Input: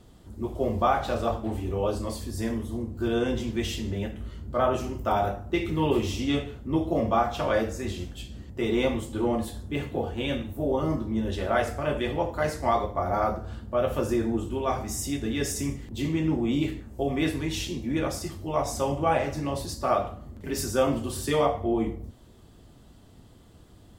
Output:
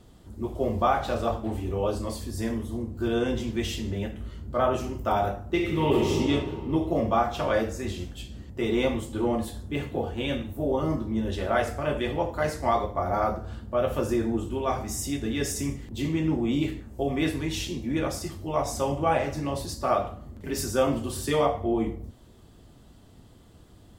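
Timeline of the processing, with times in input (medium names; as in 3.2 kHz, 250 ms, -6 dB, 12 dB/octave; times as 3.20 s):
5.52–6.11 s: reverb throw, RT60 2.7 s, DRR 1 dB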